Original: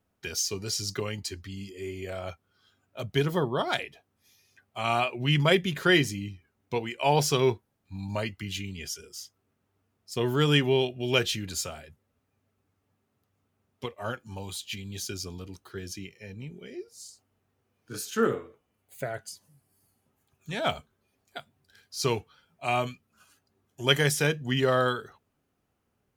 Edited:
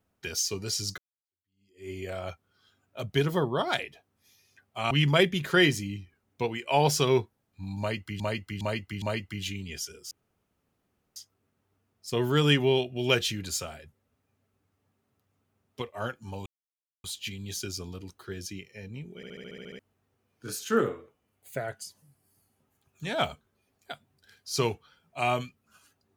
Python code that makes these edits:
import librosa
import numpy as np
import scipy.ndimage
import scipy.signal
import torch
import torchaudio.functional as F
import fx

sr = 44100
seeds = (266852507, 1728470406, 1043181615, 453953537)

y = fx.edit(x, sr, fx.fade_in_span(start_s=0.98, length_s=0.93, curve='exp'),
    fx.cut(start_s=4.91, length_s=0.32),
    fx.repeat(start_s=8.11, length_s=0.41, count=4),
    fx.insert_room_tone(at_s=9.2, length_s=1.05),
    fx.insert_silence(at_s=14.5, length_s=0.58),
    fx.stutter_over(start_s=16.62, slice_s=0.07, count=9), tone=tone)